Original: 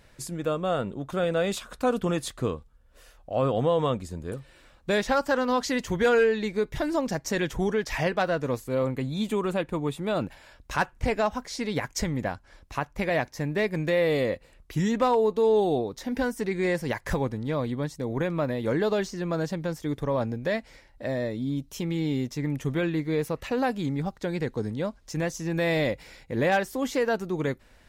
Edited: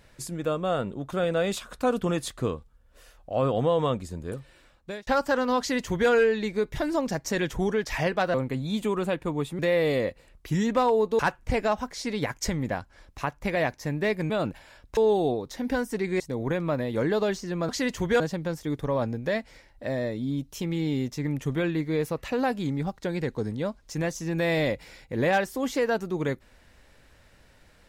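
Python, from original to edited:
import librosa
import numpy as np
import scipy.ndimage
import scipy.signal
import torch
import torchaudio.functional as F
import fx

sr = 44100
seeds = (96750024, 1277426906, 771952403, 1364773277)

y = fx.edit(x, sr, fx.fade_out_span(start_s=4.28, length_s=0.79, curve='qsin'),
    fx.duplicate(start_s=5.59, length_s=0.51, to_s=19.39),
    fx.cut(start_s=8.34, length_s=0.47),
    fx.swap(start_s=10.06, length_s=0.67, other_s=13.84, other_length_s=1.6),
    fx.cut(start_s=16.67, length_s=1.23), tone=tone)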